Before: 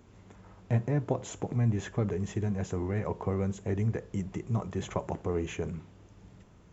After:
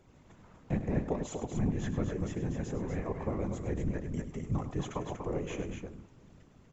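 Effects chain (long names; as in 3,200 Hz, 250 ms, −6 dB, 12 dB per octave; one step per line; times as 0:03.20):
random phases in short frames
loudspeakers that aren't time-aligned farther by 35 metres −11 dB, 83 metres −6 dB
level −4 dB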